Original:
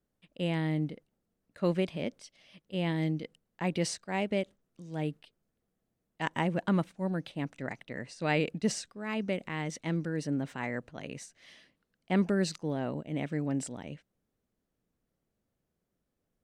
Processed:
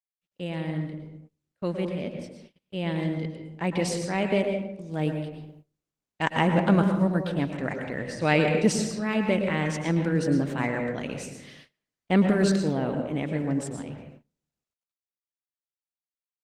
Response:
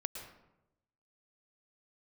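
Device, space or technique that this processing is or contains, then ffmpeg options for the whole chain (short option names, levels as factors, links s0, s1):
speakerphone in a meeting room: -filter_complex "[1:a]atrim=start_sample=2205[s0];[0:a][s0]afir=irnorm=-1:irlink=0,asplit=2[s1][s2];[s2]adelay=130,highpass=300,lowpass=3400,asoftclip=type=hard:threshold=0.0631,volume=0.0355[s3];[s1][s3]amix=inputs=2:normalize=0,dynaudnorm=f=440:g=17:m=2.82,agate=range=0.0501:threshold=0.00398:ratio=16:detection=peak" -ar 48000 -c:a libopus -b:a 20k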